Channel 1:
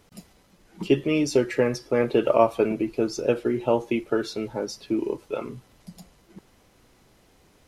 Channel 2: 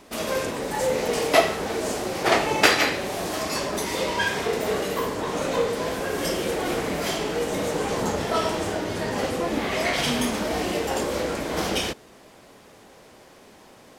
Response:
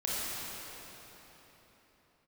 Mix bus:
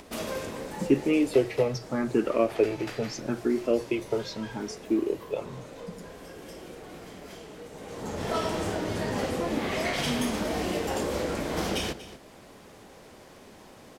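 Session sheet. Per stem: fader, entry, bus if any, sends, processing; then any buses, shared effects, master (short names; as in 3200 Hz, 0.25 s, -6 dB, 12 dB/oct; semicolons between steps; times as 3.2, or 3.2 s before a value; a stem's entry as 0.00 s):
-2.0 dB, 0.00 s, no send, no echo send, endless phaser +0.79 Hz
-2.5 dB, 0.00 s, no send, echo send -15.5 dB, compressor 1.5:1, threshold -29 dBFS, peak gain reduction 6.5 dB; auto duck -20 dB, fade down 1.90 s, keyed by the first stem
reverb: off
echo: echo 0.239 s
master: low shelf 260 Hz +5.5 dB; notches 60/120 Hz; upward compressor, threshold -46 dBFS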